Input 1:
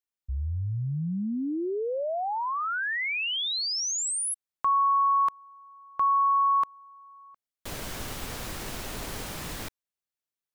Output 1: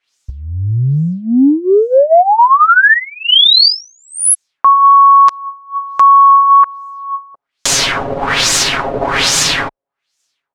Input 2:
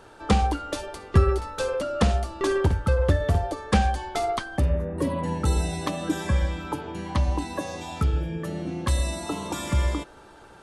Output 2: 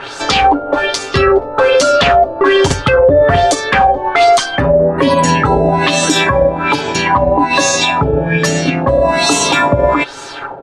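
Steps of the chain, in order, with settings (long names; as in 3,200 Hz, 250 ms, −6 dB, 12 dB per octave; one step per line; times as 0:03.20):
spectral tilt +2.5 dB per octave
comb filter 7.3 ms, depth 66%
auto-filter low-pass sine 1.2 Hz 570–7,000 Hz
transient designer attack +5 dB, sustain −3 dB
boost into a limiter +21 dB
level −1 dB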